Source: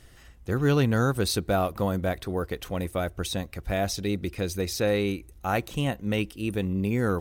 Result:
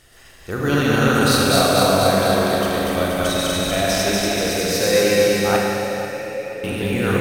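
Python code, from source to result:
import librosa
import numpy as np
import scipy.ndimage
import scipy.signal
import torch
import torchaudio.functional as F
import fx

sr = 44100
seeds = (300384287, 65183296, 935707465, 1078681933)

p1 = fx.reverse_delay_fb(x, sr, ms=120, feedback_pct=76, wet_db=-0.5)
p2 = fx.formant_cascade(p1, sr, vowel='e', at=(5.56, 6.64))
p3 = fx.low_shelf(p2, sr, hz=330.0, db=-9.5)
p4 = p3 + fx.echo_feedback(p3, sr, ms=487, feedback_pct=37, wet_db=-13.5, dry=0)
p5 = fx.rev_schroeder(p4, sr, rt60_s=2.3, comb_ms=31, drr_db=-1.0)
y = F.gain(torch.from_numpy(p5), 4.5).numpy()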